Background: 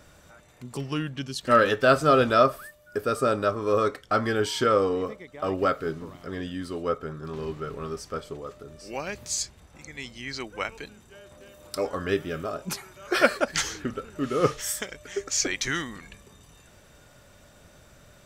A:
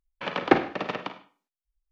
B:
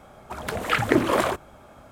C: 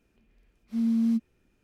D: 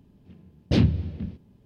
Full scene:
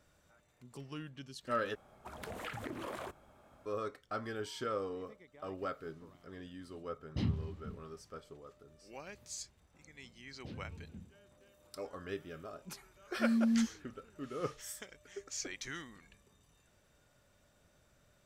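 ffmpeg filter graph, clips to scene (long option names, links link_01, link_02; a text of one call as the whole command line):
ffmpeg -i bed.wav -i cue0.wav -i cue1.wav -i cue2.wav -i cue3.wav -filter_complex "[4:a]asplit=2[link_01][link_02];[0:a]volume=-15.5dB[link_03];[2:a]acompressor=threshold=-25dB:ratio=6:attack=3.2:release=140:knee=1:detection=peak[link_04];[link_01]aecho=1:1:1:0.5[link_05];[link_02]acompressor=threshold=-26dB:ratio=6:attack=3.2:release=140:knee=1:detection=peak[link_06];[link_03]asplit=2[link_07][link_08];[link_07]atrim=end=1.754[link_09];[link_04]atrim=end=1.91,asetpts=PTS-STARTPTS,volume=-13.5dB[link_10];[link_08]atrim=start=3.656[link_11];[link_05]atrim=end=1.65,asetpts=PTS-STARTPTS,volume=-16.5dB,afade=type=in:duration=0.004:curve=hsin,afade=type=out:start_time=1.646:duration=0.004:curve=hsin,adelay=6450[link_12];[link_06]atrim=end=1.65,asetpts=PTS-STARTPTS,volume=-17dB,afade=type=in:duration=0.004:curve=hsin,afade=type=out:start_time=1.646:duration=0.004:curve=hsin,adelay=9740[link_13];[3:a]atrim=end=1.63,asetpts=PTS-STARTPTS,volume=-5.5dB,afade=type=in:duration=0.004:curve=hsin,afade=type=out:start_time=1.626:duration=0.004:curve=hsin,adelay=12470[link_14];[link_09][link_10]acrossfade=duration=0.004:curve1=hsin:curve2=hsin[link_15];[link_15][link_11]acrossfade=duration=0.004:curve1=hsin:curve2=hsin[link_16];[link_16][link_12][link_13][link_14]amix=inputs=4:normalize=0" out.wav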